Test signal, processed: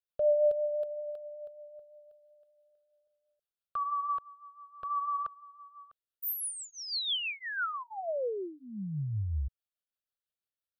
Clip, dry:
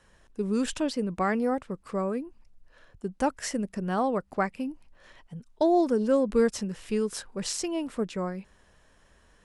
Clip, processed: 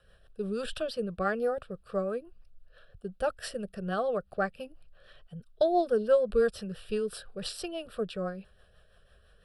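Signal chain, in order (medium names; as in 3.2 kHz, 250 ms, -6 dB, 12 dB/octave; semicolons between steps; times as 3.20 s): static phaser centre 1.4 kHz, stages 8; rotary cabinet horn 6 Hz; trim +3 dB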